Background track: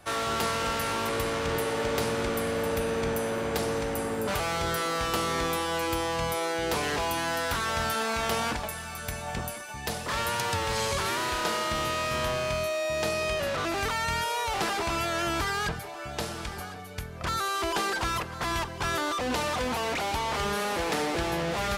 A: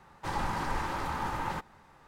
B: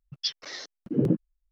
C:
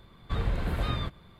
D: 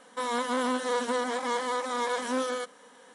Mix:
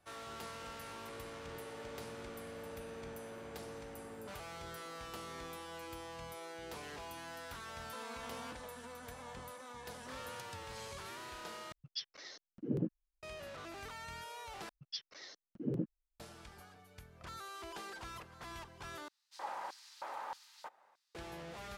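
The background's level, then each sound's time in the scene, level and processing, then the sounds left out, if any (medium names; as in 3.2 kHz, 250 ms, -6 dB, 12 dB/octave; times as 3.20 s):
background track -18.5 dB
7.76 s: add D -10.5 dB + compression, threshold -38 dBFS
11.72 s: replace with B -12 dB
14.69 s: replace with B -13 dB
19.08 s: replace with A -12.5 dB + LFO high-pass square 1.6 Hz 620–4500 Hz
not used: C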